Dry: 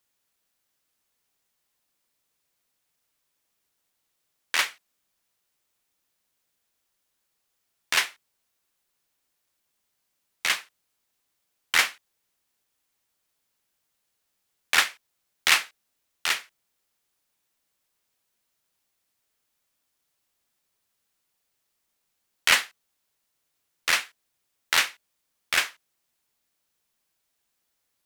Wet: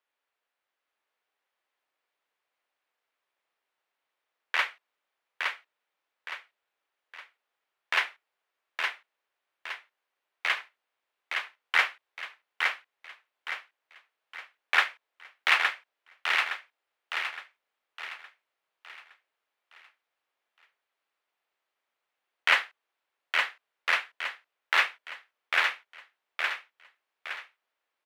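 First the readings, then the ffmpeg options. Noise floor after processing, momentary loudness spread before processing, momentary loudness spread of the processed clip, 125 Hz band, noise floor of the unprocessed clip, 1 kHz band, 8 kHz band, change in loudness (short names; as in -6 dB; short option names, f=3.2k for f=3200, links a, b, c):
under -85 dBFS, 10 LU, 20 LU, n/a, -77 dBFS, +1.5 dB, -17.0 dB, -4.5 dB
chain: -filter_complex "[0:a]acrossover=split=390 3100:gain=0.0708 1 0.0891[a][b][c];[a][b][c]amix=inputs=3:normalize=0,aecho=1:1:865|1730|2595|3460|4325:0.631|0.252|0.101|0.0404|0.0162"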